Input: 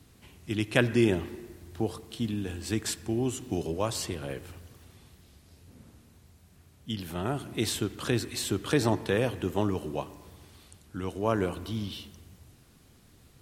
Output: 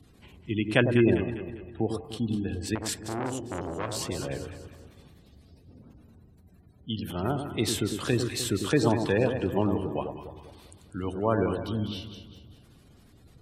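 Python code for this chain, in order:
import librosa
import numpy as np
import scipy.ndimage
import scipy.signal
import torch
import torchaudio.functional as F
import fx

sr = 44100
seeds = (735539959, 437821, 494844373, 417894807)

y = fx.spec_gate(x, sr, threshold_db=-25, keep='strong')
y = fx.echo_alternate(y, sr, ms=100, hz=870.0, feedback_pct=64, wet_db=-5.5)
y = fx.transformer_sat(y, sr, knee_hz=1400.0, at=(2.75, 4.06))
y = F.gain(torch.from_numpy(y), 1.5).numpy()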